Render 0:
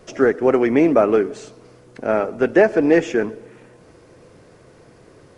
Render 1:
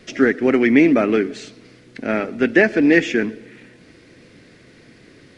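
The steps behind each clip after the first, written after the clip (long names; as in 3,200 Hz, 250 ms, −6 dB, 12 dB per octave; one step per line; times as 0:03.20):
graphic EQ with 10 bands 250 Hz +9 dB, 500 Hz −3 dB, 1,000 Hz −7 dB, 2,000 Hz +11 dB, 4,000 Hz +9 dB
level −2.5 dB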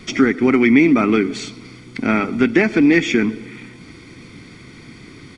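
comb filter 0.9 ms, depth 66%
downward compressor 2 to 1, threshold −20 dBFS, peak gain reduction 7.5 dB
level +6 dB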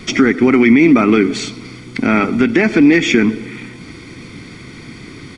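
boost into a limiter +7 dB
level −1 dB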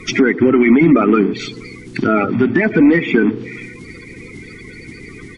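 spectral magnitudes quantised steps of 30 dB
treble cut that deepens with the level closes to 1,900 Hz, closed at −11.5 dBFS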